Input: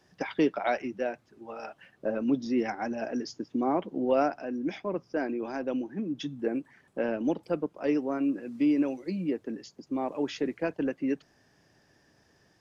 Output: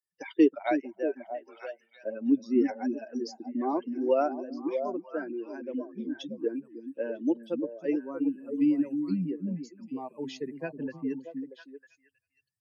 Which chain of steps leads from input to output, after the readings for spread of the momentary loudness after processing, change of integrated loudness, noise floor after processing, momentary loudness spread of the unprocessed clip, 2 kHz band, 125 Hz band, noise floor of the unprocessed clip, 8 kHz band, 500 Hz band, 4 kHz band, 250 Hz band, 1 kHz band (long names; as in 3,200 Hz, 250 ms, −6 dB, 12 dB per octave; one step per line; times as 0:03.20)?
14 LU, −0.5 dB, −76 dBFS, 9 LU, −4.5 dB, −0.5 dB, −66 dBFS, can't be measured, −0.5 dB, −4.0 dB, +0.5 dB, −2.5 dB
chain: spectral dynamics exaggerated over time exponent 2
high-pass filter sweep 310 Hz → 140 Hz, 0:07.33–0:08.48
echo through a band-pass that steps 317 ms, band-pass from 200 Hz, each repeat 1.4 octaves, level −3 dB